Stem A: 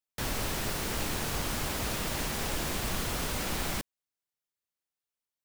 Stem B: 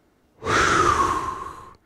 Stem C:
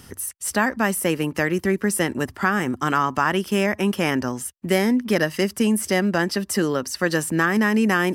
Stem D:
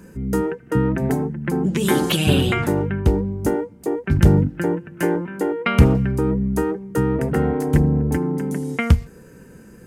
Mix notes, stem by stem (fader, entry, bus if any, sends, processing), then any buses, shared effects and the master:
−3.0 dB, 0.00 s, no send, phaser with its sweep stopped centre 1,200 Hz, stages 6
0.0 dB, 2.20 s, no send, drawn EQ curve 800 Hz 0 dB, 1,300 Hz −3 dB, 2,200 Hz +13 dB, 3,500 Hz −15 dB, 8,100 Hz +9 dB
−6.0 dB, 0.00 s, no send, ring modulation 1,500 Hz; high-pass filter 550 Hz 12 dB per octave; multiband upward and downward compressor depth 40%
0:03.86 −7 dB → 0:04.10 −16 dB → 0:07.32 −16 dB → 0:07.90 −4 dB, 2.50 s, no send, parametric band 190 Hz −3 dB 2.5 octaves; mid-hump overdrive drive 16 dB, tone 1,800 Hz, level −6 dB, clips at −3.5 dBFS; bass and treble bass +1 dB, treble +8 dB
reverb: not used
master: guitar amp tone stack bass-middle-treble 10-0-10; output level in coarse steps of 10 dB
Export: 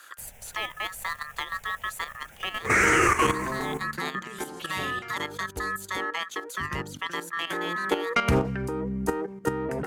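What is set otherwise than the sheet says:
stem A −3.0 dB → −11.0 dB
master: missing guitar amp tone stack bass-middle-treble 10-0-10

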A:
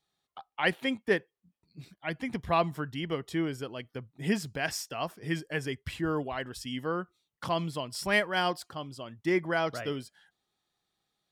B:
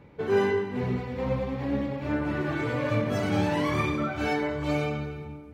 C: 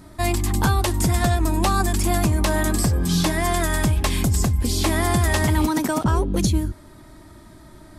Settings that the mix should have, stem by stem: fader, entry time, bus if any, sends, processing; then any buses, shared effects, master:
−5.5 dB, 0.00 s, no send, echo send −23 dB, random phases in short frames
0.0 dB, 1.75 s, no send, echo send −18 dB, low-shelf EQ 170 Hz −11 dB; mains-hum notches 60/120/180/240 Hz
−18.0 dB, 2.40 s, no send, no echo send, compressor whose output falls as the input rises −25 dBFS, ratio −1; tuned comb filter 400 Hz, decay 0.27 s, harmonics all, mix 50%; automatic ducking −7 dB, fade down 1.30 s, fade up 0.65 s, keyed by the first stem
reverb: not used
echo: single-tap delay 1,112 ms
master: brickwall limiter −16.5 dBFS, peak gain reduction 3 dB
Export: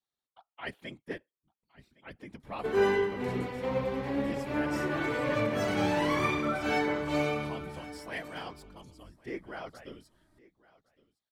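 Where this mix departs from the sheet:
stem A −5.5 dB → −13.0 dB
stem B: entry 1.75 s → 2.45 s
master: missing brickwall limiter −16.5 dBFS, peak gain reduction 3 dB

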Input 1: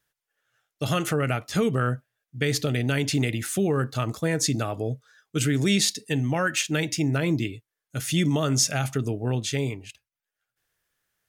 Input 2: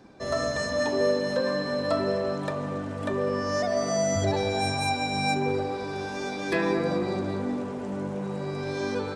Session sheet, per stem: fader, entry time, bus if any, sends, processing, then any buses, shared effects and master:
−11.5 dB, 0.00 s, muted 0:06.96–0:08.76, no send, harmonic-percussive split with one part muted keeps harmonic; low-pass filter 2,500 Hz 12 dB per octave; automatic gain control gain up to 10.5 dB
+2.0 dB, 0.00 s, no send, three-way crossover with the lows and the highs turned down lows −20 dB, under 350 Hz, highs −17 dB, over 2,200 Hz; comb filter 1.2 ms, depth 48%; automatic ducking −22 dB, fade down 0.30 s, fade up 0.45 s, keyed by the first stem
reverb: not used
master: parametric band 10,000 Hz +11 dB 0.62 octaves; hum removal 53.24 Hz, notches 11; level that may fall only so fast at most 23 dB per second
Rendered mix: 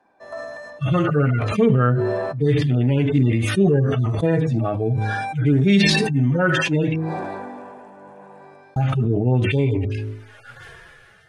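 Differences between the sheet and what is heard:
stem 1 −11.5 dB → −2.5 dB
stem 2 +2.0 dB → −5.0 dB

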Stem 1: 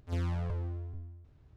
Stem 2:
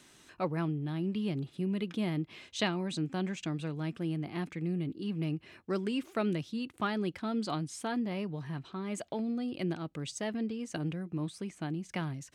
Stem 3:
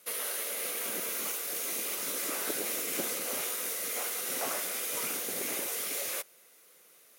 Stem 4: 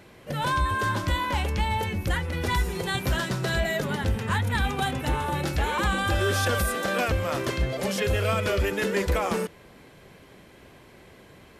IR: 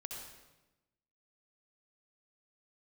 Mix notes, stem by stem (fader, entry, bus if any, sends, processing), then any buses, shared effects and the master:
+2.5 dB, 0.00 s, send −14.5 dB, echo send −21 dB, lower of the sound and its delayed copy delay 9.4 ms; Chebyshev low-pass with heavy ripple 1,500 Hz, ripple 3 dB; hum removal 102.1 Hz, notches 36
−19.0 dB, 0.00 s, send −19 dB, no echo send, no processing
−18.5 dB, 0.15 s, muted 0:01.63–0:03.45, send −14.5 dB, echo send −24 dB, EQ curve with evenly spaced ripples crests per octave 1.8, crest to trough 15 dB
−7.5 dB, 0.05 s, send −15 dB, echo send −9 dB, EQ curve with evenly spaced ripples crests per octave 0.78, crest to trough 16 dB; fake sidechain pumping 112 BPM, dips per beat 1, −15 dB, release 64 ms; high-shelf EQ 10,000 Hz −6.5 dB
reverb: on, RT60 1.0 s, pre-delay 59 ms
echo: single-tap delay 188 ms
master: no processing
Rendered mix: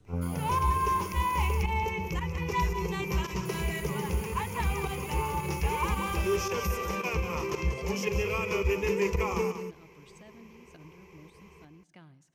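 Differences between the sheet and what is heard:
stem 4: send off
reverb return +7.0 dB

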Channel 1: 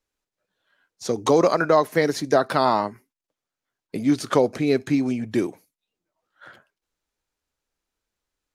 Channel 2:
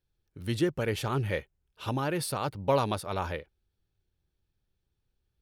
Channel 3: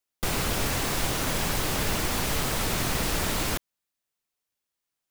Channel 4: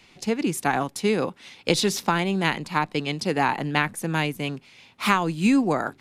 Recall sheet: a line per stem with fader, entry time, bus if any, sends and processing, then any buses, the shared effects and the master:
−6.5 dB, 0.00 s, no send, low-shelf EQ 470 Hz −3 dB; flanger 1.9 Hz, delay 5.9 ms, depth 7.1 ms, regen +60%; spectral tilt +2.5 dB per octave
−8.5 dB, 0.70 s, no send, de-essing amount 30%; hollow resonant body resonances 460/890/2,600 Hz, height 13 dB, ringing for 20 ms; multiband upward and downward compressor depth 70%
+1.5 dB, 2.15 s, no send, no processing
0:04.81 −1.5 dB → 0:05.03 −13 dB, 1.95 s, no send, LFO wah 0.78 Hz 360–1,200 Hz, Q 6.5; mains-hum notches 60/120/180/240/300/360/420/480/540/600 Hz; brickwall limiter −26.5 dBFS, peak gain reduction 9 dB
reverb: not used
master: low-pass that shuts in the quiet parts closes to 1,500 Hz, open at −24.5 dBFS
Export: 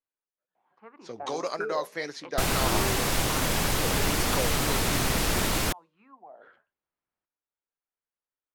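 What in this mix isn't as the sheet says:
stem 2: muted
stem 4: entry 1.95 s → 0.55 s

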